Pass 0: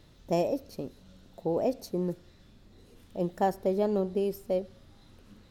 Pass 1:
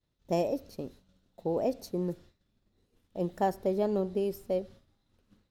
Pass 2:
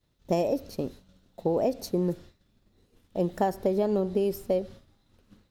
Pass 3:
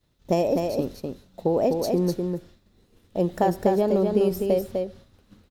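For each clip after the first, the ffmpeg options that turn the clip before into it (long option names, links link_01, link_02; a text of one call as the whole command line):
ffmpeg -i in.wav -af "agate=range=-33dB:threshold=-44dB:ratio=3:detection=peak,volume=-1.5dB" out.wav
ffmpeg -i in.wav -af "acompressor=threshold=-29dB:ratio=6,volume=7.5dB" out.wav
ffmpeg -i in.wav -af "aecho=1:1:251:0.596,volume=3.5dB" out.wav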